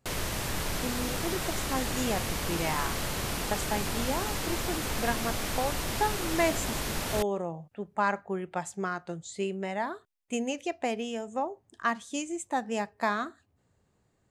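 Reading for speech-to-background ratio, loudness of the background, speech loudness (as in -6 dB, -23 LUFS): -1.5 dB, -32.0 LUFS, -33.5 LUFS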